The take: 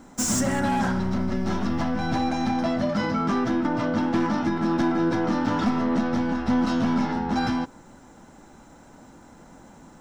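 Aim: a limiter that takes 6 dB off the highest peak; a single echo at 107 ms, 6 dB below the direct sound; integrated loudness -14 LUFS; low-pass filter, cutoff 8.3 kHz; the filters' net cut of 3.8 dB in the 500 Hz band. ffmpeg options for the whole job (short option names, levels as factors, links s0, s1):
-af "lowpass=8300,equalizer=f=500:t=o:g=-5.5,alimiter=limit=0.0944:level=0:latency=1,aecho=1:1:107:0.501,volume=4.73"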